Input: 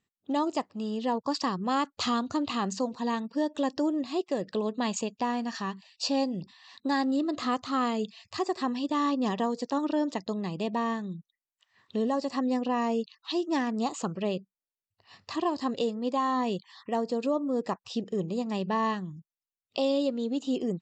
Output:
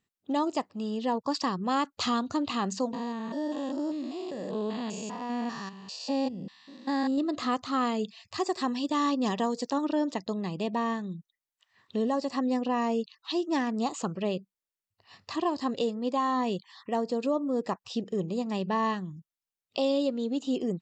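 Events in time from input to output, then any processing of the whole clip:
0:02.93–0:07.18: spectrum averaged block by block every 200 ms
0:08.39–0:09.73: high-shelf EQ 5,000 Hz +8 dB

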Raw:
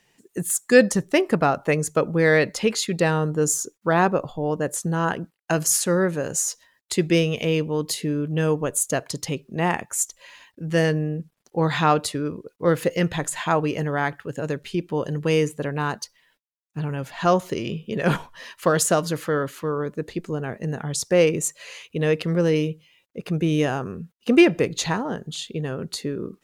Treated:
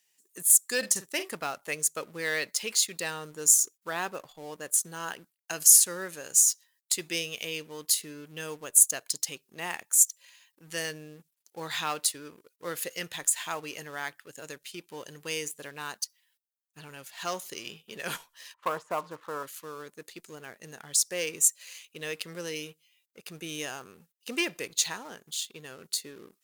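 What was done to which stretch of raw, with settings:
0:00.78–0:01.29: double-tracking delay 47 ms −11 dB
0:18.54–0:19.43: low-pass with resonance 1,000 Hz, resonance Q 4.1
whole clip: parametric band 340 Hz +3 dB 1.4 octaves; leveller curve on the samples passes 1; first-order pre-emphasis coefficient 0.97

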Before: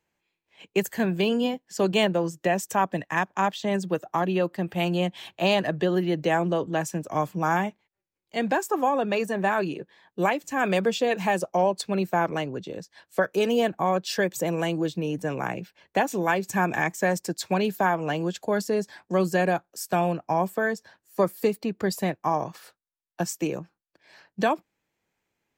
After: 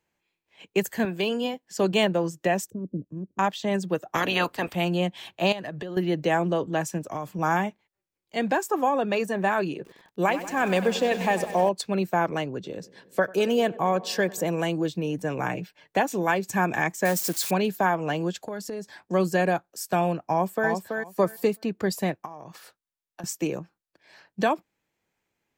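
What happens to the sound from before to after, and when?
0:01.05–0:01.63: high-pass filter 340 Hz 6 dB per octave
0:02.70–0:03.39: inverse Chebyshev low-pass filter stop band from 740 Hz
0:04.14–0:04.74: ceiling on every frequency bin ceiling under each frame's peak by 23 dB
0:05.52–0:05.97: downward compressor 12 to 1, threshold −30 dBFS
0:06.98–0:07.39: downward compressor 5 to 1, threshold −27 dBFS
0:09.75–0:11.69: feedback echo at a low word length 96 ms, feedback 80%, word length 7 bits, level −13 dB
0:12.54–0:14.48: feedback echo with a low-pass in the loop 95 ms, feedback 80%, level −21 dB
0:15.38–0:15.97: comb filter 6.7 ms, depth 61%
0:17.05–0:17.51: spike at every zero crossing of −23.5 dBFS
0:18.45–0:18.97: downward compressor 4 to 1, threshold −31 dBFS
0:20.30–0:20.70: delay throw 330 ms, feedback 15%, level −5 dB
0:22.25–0:23.24: downward compressor 12 to 1, threshold −36 dBFS

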